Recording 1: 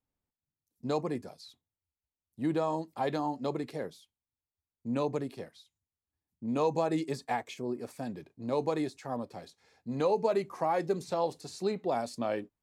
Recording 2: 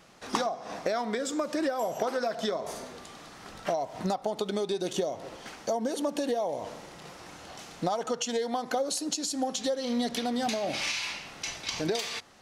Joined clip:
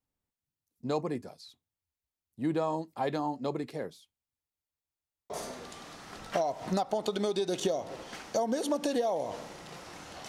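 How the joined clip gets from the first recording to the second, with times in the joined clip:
recording 1
4.40 s: stutter in place 0.15 s, 6 plays
5.30 s: go over to recording 2 from 2.63 s

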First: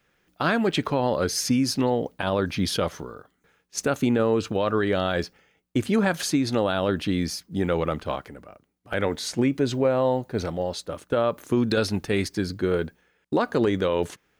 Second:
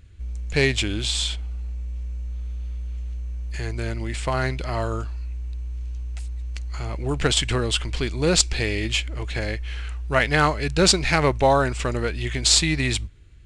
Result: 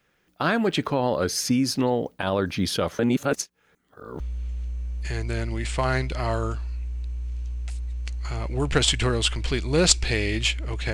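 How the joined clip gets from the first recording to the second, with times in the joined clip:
first
2.99–4.20 s: reverse
4.20 s: go over to second from 2.69 s

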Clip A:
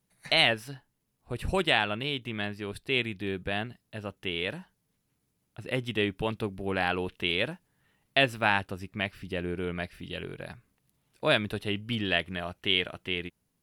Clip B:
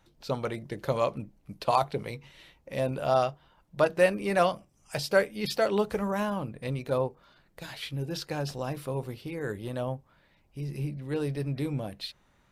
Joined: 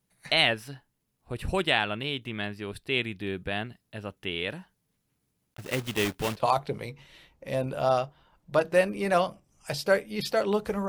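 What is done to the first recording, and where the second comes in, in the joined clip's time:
clip A
5.52–6.42 s: block-companded coder 3-bit
6.39 s: go over to clip B from 1.64 s, crossfade 0.06 s

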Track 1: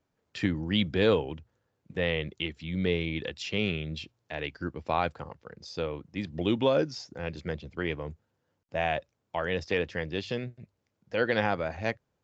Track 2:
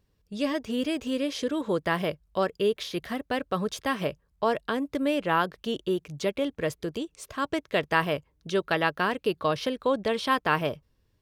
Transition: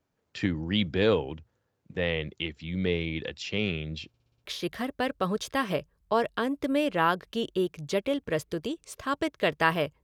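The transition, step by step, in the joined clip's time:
track 1
4.08 s: stutter in place 0.06 s, 6 plays
4.44 s: go over to track 2 from 2.75 s

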